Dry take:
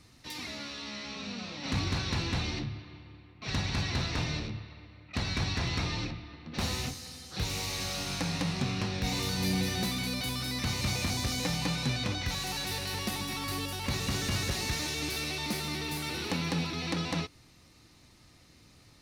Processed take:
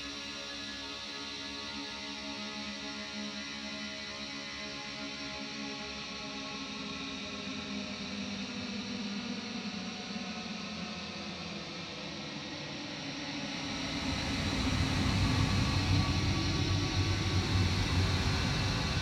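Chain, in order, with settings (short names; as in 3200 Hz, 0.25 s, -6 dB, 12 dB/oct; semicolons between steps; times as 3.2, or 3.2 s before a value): Paulstretch 15×, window 0.25 s, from 0.73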